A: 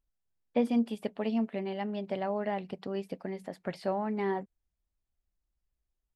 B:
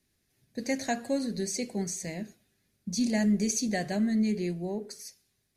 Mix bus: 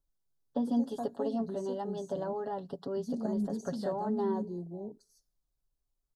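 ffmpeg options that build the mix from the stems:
-filter_complex "[0:a]acrossover=split=300[a][b];[b]acompressor=threshold=-32dB:ratio=6[c];[a][c]amix=inputs=2:normalize=0,aecho=1:1:7.2:0.73,volume=-1.5dB,asplit=2[d][e];[1:a]afwtdn=0.02,adelay=100,volume=-7.5dB[f];[e]apad=whole_len=250000[g];[f][g]sidechaincompress=threshold=-31dB:ratio=8:attack=16:release=133[h];[d][h]amix=inputs=2:normalize=0,asuperstop=centerf=2300:order=4:qfactor=1.1"

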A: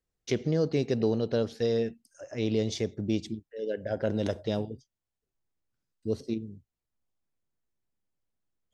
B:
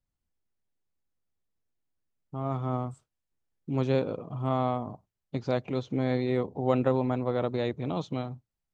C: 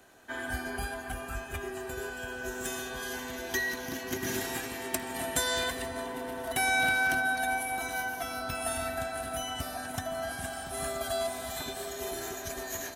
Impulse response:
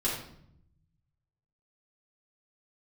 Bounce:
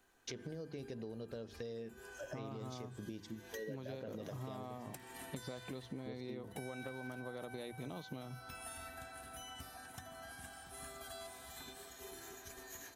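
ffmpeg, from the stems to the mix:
-filter_complex "[0:a]volume=-1dB[a];[1:a]equalizer=f=4.2k:w=1.4:g=7,bandreject=f=60:t=h:w=6,bandreject=f=120:t=h:w=6,acompressor=threshold=-30dB:ratio=6,volume=0dB[b];[2:a]equalizer=f=620:w=5.9:g=-11.5,volume=-13dB[c];[a][c]amix=inputs=2:normalize=0,bandreject=f=50:t=h:w=6,bandreject=f=100:t=h:w=6,bandreject=f=150:t=h:w=6,bandreject=f=200:t=h:w=6,bandreject=f=250:t=h:w=6,bandreject=f=300:t=h:w=6,bandreject=f=350:t=h:w=6,bandreject=f=400:t=h:w=6,alimiter=level_in=2dB:limit=-24dB:level=0:latency=1:release=315,volume=-2dB,volume=0dB[d];[b][d]amix=inputs=2:normalize=0,acompressor=threshold=-43dB:ratio=5"

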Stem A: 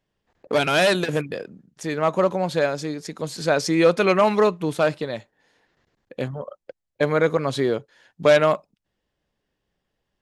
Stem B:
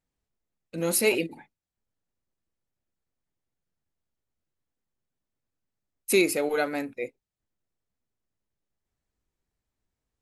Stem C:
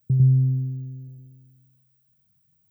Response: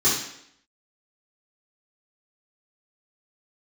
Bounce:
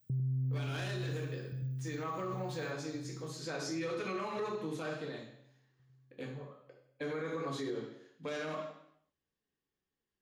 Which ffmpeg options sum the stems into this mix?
-filter_complex "[0:a]lowshelf=f=470:g=-3.5,bandreject=f=50:t=h:w=6,bandreject=f=100:t=h:w=6,bandreject=f=150:t=h:w=6,bandreject=f=200:t=h:w=6,bandreject=f=250:t=h:w=6,bandreject=f=300:t=h:w=6,volume=-17dB,asplit=2[a][b];[b]volume=-12.5dB[c];[2:a]volume=-2.5dB,asplit=2[d][e];[e]volume=-15.5dB[f];[3:a]atrim=start_sample=2205[g];[c][g]afir=irnorm=-1:irlink=0[h];[f]aecho=0:1:712|1424|2136|2848|3560|4272|4984|5696|6408:1|0.59|0.348|0.205|0.121|0.0715|0.0422|0.0249|0.0147[i];[a][d][h][i]amix=inputs=4:normalize=0,alimiter=level_in=5.5dB:limit=-24dB:level=0:latency=1:release=63,volume=-5.5dB"

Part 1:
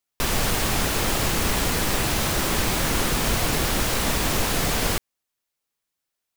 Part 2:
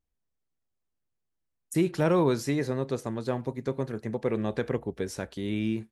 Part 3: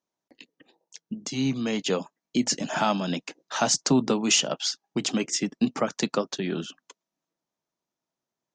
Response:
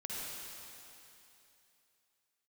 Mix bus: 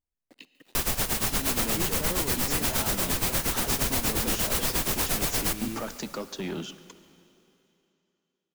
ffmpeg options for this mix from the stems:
-filter_complex "[0:a]highshelf=f=7.4k:g=9,tremolo=f=8.5:d=0.86,adelay=550,volume=1.5dB,asplit=3[a][b][c];[b]volume=-16.5dB[d];[c]volume=-18dB[e];[1:a]volume=-7.5dB[f];[2:a]alimiter=limit=-20dB:level=0:latency=1:release=107,acrusher=bits=9:mix=0:aa=0.000001,asoftclip=type=tanh:threshold=-27dB,volume=-1dB,asplit=3[g][h][i];[h]volume=-14dB[j];[i]volume=-22dB[k];[3:a]atrim=start_sample=2205[l];[d][j]amix=inputs=2:normalize=0[m];[m][l]afir=irnorm=-1:irlink=0[n];[e][k]amix=inputs=2:normalize=0,aecho=0:1:142:1[o];[a][f][g][n][o]amix=inputs=5:normalize=0,alimiter=limit=-15dB:level=0:latency=1:release=158"

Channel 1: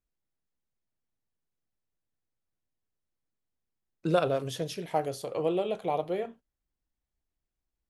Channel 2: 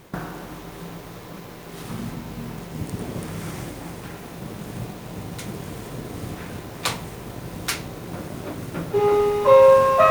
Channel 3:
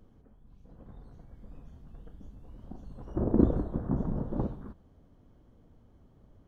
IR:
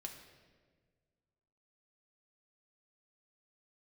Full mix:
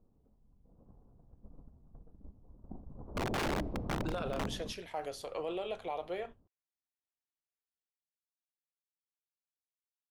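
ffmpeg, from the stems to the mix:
-filter_complex "[0:a]highpass=f=1.1k:p=1,volume=1dB[a];[2:a]lowpass=f=1.1k:w=0.5412,lowpass=f=1.1k:w=1.3066,bandreject=f=46.97:t=h:w=4,bandreject=f=93.94:t=h:w=4,bandreject=f=140.91:t=h:w=4,bandreject=f=187.88:t=h:w=4,bandreject=f=234.85:t=h:w=4,bandreject=f=281.82:t=h:w=4,bandreject=f=328.79:t=h:w=4,aeval=exprs='(mod(16.8*val(0)+1,2)-1)/16.8':c=same,volume=-2.5dB,asplit=2[b][c];[c]volume=-19.5dB[d];[3:a]atrim=start_sample=2205[e];[d][e]afir=irnorm=-1:irlink=0[f];[a][b][f]amix=inputs=3:normalize=0,agate=range=-8dB:threshold=-47dB:ratio=16:detection=peak,lowpass=f=3.8k:p=1,alimiter=level_in=4dB:limit=-24dB:level=0:latency=1:release=37,volume=-4dB"

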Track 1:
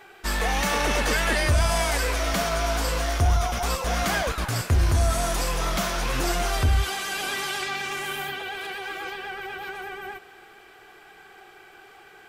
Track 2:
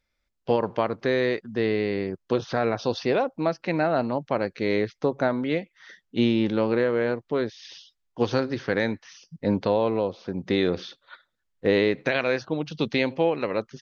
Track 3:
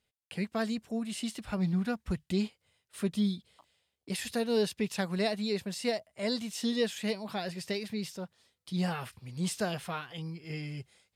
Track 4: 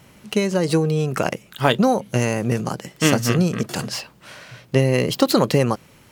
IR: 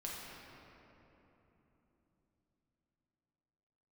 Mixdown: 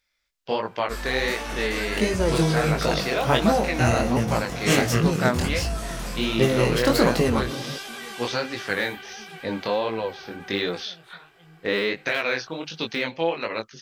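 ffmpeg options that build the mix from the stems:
-filter_complex "[0:a]adelay=650,volume=-5.5dB[a];[1:a]deesser=0.85,tiltshelf=f=900:g=-7.5,volume=3dB,asplit=2[b][c];[2:a]adelay=1250,volume=-11.5dB[d];[3:a]adelay=1650,volume=-1.5dB,asplit=2[e][f];[f]volume=-9dB[g];[c]apad=whole_len=546847[h];[d][h]sidechaincompress=threshold=-30dB:ratio=8:attack=16:release=390[i];[4:a]atrim=start_sample=2205[j];[g][j]afir=irnorm=-1:irlink=0[k];[a][b][i][e][k]amix=inputs=5:normalize=0,flanger=delay=17.5:depth=7.1:speed=1.4"

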